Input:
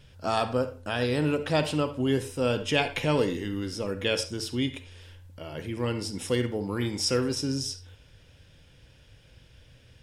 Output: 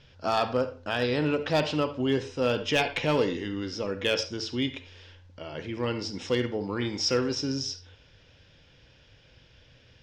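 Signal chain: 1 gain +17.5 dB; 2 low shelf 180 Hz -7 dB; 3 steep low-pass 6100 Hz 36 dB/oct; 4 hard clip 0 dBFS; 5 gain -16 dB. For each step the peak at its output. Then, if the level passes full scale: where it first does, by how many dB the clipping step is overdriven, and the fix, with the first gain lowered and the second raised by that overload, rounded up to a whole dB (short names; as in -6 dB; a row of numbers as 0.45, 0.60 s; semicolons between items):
+7.0, +7.5, +7.5, 0.0, -16.0 dBFS; step 1, 7.5 dB; step 1 +9.5 dB, step 5 -8 dB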